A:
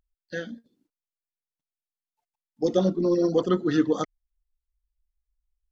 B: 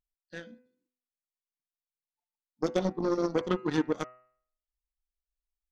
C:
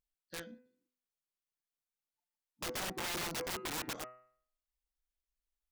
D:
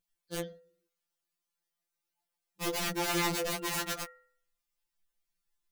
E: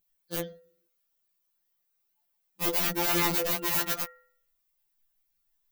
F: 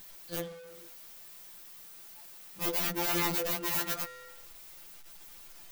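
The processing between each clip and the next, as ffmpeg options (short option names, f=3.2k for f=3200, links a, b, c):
-af "aeval=exprs='0.376*(cos(1*acos(clip(val(0)/0.376,-1,1)))-cos(1*PI/2))+0.0422*(cos(7*acos(clip(val(0)/0.376,-1,1)))-cos(7*PI/2))':c=same,acompressor=threshold=-25dB:ratio=2.5,bandreject=f=125.7:t=h:w=4,bandreject=f=251.4:t=h:w=4,bandreject=f=377.1:t=h:w=4,bandreject=f=502.8:t=h:w=4,bandreject=f=628.5:t=h:w=4,bandreject=f=754.2:t=h:w=4,bandreject=f=879.9:t=h:w=4,bandreject=f=1.0056k:t=h:w=4,bandreject=f=1.1313k:t=h:w=4,bandreject=f=1.257k:t=h:w=4,bandreject=f=1.3827k:t=h:w=4,bandreject=f=1.5084k:t=h:w=4,bandreject=f=1.6341k:t=h:w=4,bandreject=f=1.7598k:t=h:w=4,bandreject=f=1.8855k:t=h:w=4,bandreject=f=2.0112k:t=h:w=4,bandreject=f=2.1369k:t=h:w=4,bandreject=f=2.2626k:t=h:w=4,bandreject=f=2.3883k:t=h:w=4,bandreject=f=2.514k:t=h:w=4,bandreject=f=2.6397k:t=h:w=4,bandreject=f=2.7654k:t=h:w=4,bandreject=f=2.8911k:t=h:w=4"
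-af "aeval=exprs='(mod(35.5*val(0)+1,2)-1)/35.5':c=same,volume=-1.5dB"
-af "afftfilt=real='re*2.83*eq(mod(b,8),0)':imag='im*2.83*eq(mod(b,8),0)':win_size=2048:overlap=0.75,volume=8dB"
-af "aexciter=amount=3.8:drive=2.6:freq=12k,volume=2.5dB"
-af "aeval=exprs='val(0)+0.5*0.0106*sgn(val(0))':c=same,volume=-4.5dB"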